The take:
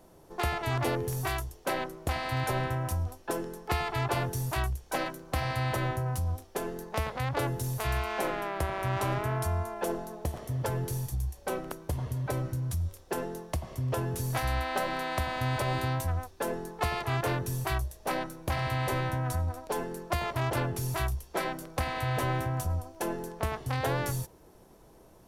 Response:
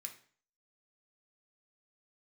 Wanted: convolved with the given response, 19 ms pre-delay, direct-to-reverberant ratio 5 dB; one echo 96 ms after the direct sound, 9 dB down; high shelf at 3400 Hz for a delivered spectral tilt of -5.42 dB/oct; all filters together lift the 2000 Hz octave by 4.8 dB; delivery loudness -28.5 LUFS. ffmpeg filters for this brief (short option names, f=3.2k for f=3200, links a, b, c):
-filter_complex "[0:a]equalizer=f=2k:t=o:g=7,highshelf=f=3.4k:g=-4,aecho=1:1:96:0.355,asplit=2[a][b];[1:a]atrim=start_sample=2205,adelay=19[c];[b][c]afir=irnorm=-1:irlink=0,volume=-0.5dB[d];[a][d]amix=inputs=2:normalize=0,volume=1dB"